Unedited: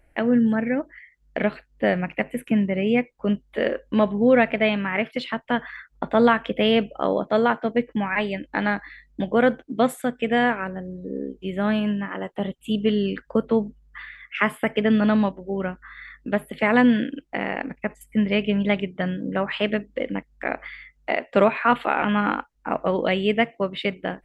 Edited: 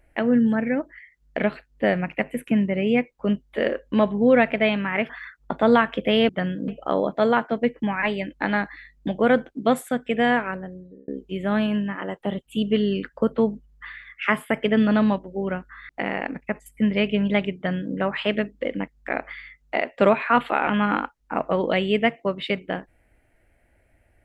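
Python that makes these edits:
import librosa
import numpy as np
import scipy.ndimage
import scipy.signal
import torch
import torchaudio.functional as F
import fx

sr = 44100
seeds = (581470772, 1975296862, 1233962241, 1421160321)

y = fx.edit(x, sr, fx.cut(start_s=5.09, length_s=0.52),
    fx.fade_out_span(start_s=10.63, length_s=0.58),
    fx.cut(start_s=16.02, length_s=1.22),
    fx.duplicate(start_s=18.91, length_s=0.39, to_s=6.81), tone=tone)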